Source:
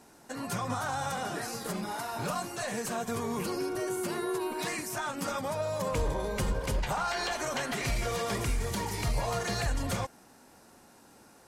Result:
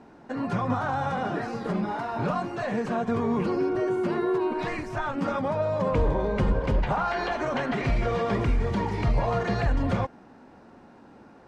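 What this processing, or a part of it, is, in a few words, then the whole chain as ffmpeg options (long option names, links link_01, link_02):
phone in a pocket: -filter_complex "[0:a]asplit=3[link_01][link_02][link_03];[link_01]afade=type=out:start_time=4.57:duration=0.02[link_04];[link_02]asubboost=boost=11.5:cutoff=59,afade=type=in:start_time=4.57:duration=0.02,afade=type=out:start_time=5.14:duration=0.02[link_05];[link_03]afade=type=in:start_time=5.14:duration=0.02[link_06];[link_04][link_05][link_06]amix=inputs=3:normalize=0,lowpass=3600,equalizer=frequency=240:width_type=o:width=1.1:gain=3,highshelf=frequency=2400:gain=-10.5,volume=6.5dB"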